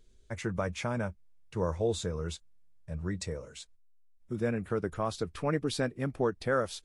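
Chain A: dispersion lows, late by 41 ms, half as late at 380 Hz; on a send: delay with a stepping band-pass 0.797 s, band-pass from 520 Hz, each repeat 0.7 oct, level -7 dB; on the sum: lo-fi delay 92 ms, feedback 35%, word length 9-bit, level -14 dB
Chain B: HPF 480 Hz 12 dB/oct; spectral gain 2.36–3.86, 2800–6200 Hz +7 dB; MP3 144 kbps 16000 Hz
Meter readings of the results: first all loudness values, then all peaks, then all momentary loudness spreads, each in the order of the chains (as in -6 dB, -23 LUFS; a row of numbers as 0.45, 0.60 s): -33.5, -38.0 LUFS; -17.0, -18.5 dBFS; 14, 13 LU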